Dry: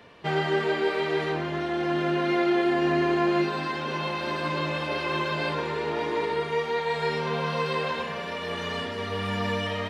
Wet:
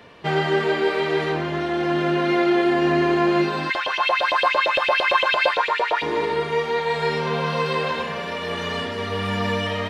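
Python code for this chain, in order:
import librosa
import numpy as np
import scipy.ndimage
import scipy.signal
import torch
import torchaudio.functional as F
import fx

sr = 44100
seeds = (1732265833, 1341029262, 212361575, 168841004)

y = fx.filter_lfo_highpass(x, sr, shape='saw_up', hz=8.8, low_hz=500.0, high_hz=3500.0, q=5.4, at=(3.69, 6.01), fade=0.02)
y = y * librosa.db_to_amplitude(4.5)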